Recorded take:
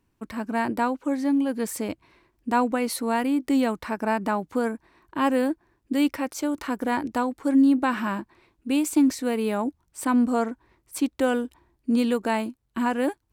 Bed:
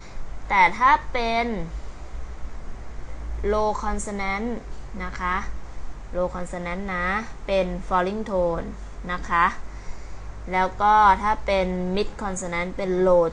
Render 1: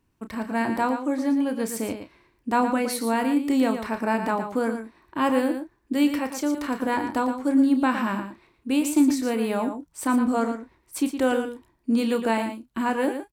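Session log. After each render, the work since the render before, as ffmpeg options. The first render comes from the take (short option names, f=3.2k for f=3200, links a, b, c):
-filter_complex "[0:a]asplit=2[a][b];[b]adelay=31,volume=-10dB[c];[a][c]amix=inputs=2:normalize=0,aecho=1:1:115:0.376"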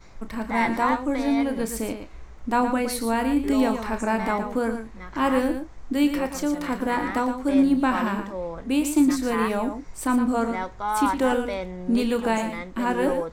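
-filter_complex "[1:a]volume=-9dB[a];[0:a][a]amix=inputs=2:normalize=0"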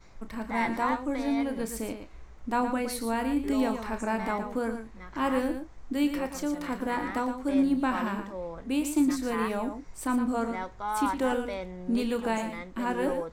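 -af "volume=-5.5dB"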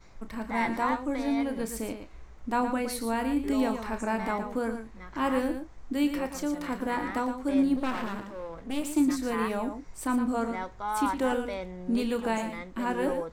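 -filter_complex "[0:a]asettb=1/sr,asplit=3[a][b][c];[a]atrim=end=7.764[d];[b]atrim=start=7.76:end=8.94,asetpts=PTS-STARTPTS,afade=t=in:d=0.004:c=qsin,afade=t=out:st=1.176:d=0.004:c=qsin,aeval=exprs='clip(val(0),-1,0.00944)':c=same[e];[c]atrim=start=8.936[f];[d][e]acrossfade=d=0.004:c1=hsin:c2=qsin[g];[g][f]acrossfade=d=0.004:c1=qsin:c2=hsin"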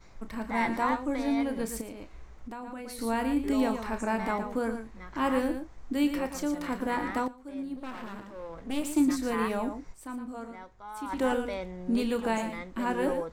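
-filter_complex "[0:a]asettb=1/sr,asplit=3[a][b][c];[a]atrim=end=1.814[d];[b]atrim=start=1.81:end=2.99,asetpts=PTS-STARTPTS,afade=t=in:d=0.004:c=qsin,afade=t=out:st=1.176:d=0.004:c=qsin,acompressor=threshold=-37dB:ratio=6:attack=3.2:release=140:knee=1:detection=peak[e];[c]atrim=start=2.986[f];[d][e]acrossfade=d=0.004:c1=hsin:c2=qsin[g];[g][f]acrossfade=d=0.004:c1=qsin:c2=hsin,asplit=4[h][i][j][k];[h]atrim=end=7.28,asetpts=PTS-STARTPTS,afade=t=out:st=7.276:d=0.004:c=hsin:silence=0.188365[l];[i]atrim=start=7.28:end=10.1,asetpts=PTS-STARTPTS,afade=t=in:d=1.38:c=qua:silence=0.188365,afade=t=out:st=2.64:d=0.18:c=exp:silence=0.281838[m];[j]atrim=start=10.1:end=10.95,asetpts=PTS-STARTPTS,volume=-11dB[n];[k]atrim=start=10.95,asetpts=PTS-STARTPTS,afade=t=in:d=0.18:c=exp:silence=0.281838[o];[l][m][n][o]concat=n=4:v=0:a=1"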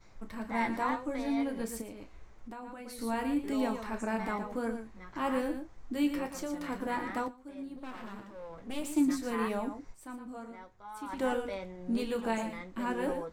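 -af "flanger=delay=8.5:depth=2.3:regen=-44:speed=1.7:shape=triangular"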